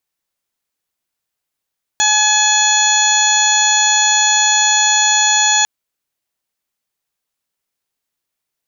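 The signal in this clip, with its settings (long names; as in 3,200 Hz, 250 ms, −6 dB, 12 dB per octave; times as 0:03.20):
steady harmonic partials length 3.65 s, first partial 848 Hz, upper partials −1/−6.5/0/−4.5/−18/−5/3.5 dB, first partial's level −17.5 dB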